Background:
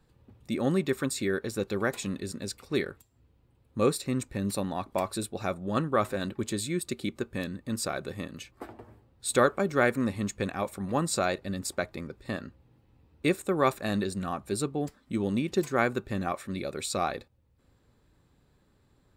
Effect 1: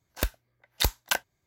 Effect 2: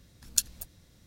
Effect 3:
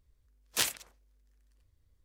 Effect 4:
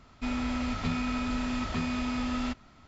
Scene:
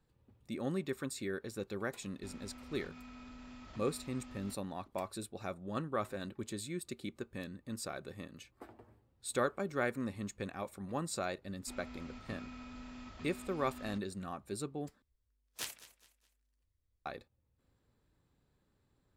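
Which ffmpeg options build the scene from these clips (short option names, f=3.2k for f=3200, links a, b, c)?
-filter_complex "[4:a]asplit=2[a][b];[0:a]volume=-10dB[c];[a]acompressor=threshold=-32dB:ratio=6:attack=3.2:release=140:knee=1:detection=peak[d];[3:a]aecho=1:1:208|416|624:0.141|0.0509|0.0183[e];[c]asplit=2[f][g];[f]atrim=end=15.024[h];[e]atrim=end=2.04,asetpts=PTS-STARTPTS,volume=-12.5dB[i];[g]atrim=start=17.056[j];[d]atrim=end=2.87,asetpts=PTS-STARTPTS,volume=-15.5dB,afade=t=in:d=0.004:c=hsin,afade=t=out:st=2.866:d=0.004:c=hsin,adelay=2010[k];[b]atrim=end=2.87,asetpts=PTS-STARTPTS,volume=-18dB,afade=t=in:d=0.004:c=hsin,afade=t=out:st=2.866:d=0.004:c=hsin,adelay=11450[l];[h][i]acrossfade=d=0.004:c1=hsin:c2=hsin[m];[m][j]acrossfade=d=0.004:c1=hsin:c2=hsin[n];[n][k][l]amix=inputs=3:normalize=0"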